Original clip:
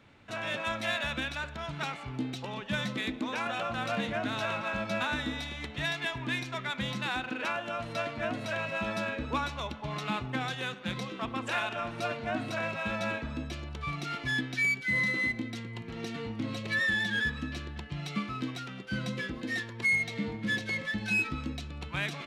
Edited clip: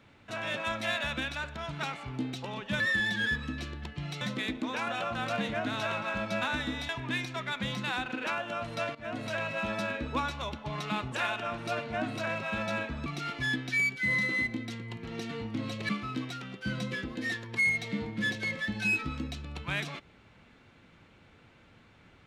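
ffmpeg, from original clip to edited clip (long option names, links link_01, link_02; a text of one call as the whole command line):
ffmpeg -i in.wav -filter_complex "[0:a]asplit=8[link_01][link_02][link_03][link_04][link_05][link_06][link_07][link_08];[link_01]atrim=end=2.802[link_09];[link_02]atrim=start=16.738:end=18.152[link_10];[link_03]atrim=start=2.798:end=5.482[link_11];[link_04]atrim=start=6.068:end=8.13,asetpts=PTS-STARTPTS,afade=type=out:start_time=2.058:duration=0.004:curve=hsin:silence=0.133352[link_12];[link_05]atrim=start=8.13:end=10.302,asetpts=PTS-STARTPTS,afade=type=in:duration=0.27:silence=0.133352[link_13];[link_06]atrim=start=11.448:end=13.392[link_14];[link_07]atrim=start=13.908:end=16.742[link_15];[link_08]atrim=start=18.148[link_16];[link_09][link_10]acrossfade=duration=0.004:curve1=hsin:curve2=hsin[link_17];[link_17][link_11]acrossfade=duration=0.004:curve1=hsin:curve2=hsin[link_18];[link_12][link_13]concat=n=2:v=0:a=1[link_19];[link_18][link_19]acrossfade=duration=0.004:curve1=hsin:curve2=hsin[link_20];[link_20][link_14]acrossfade=duration=0.004:curve1=hsin:curve2=hsin[link_21];[link_21][link_15]acrossfade=duration=0.004:curve1=hsin:curve2=hsin[link_22];[link_22][link_16]acrossfade=duration=0.004:curve1=hsin:curve2=hsin" out.wav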